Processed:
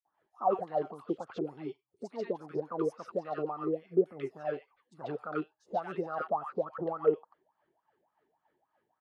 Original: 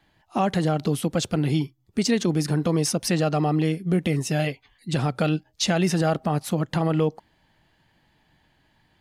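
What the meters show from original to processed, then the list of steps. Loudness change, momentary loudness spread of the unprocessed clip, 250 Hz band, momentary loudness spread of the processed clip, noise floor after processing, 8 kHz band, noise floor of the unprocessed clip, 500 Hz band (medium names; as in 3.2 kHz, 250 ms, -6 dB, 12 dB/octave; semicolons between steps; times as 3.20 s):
-10.5 dB, 4 LU, -15.0 dB, 11 LU, -83 dBFS, under -35 dB, -65 dBFS, -5.5 dB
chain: wah-wah 3.5 Hz 370–1300 Hz, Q 9.9; three bands offset in time highs, lows, mids 50/140 ms, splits 1.2/5.8 kHz; trim +5.5 dB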